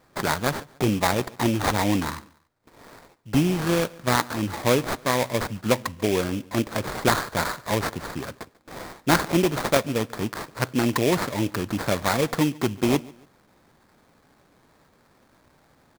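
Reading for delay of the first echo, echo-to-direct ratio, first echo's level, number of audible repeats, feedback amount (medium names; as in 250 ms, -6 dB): 142 ms, -22.5 dB, -23.0 dB, 2, 34%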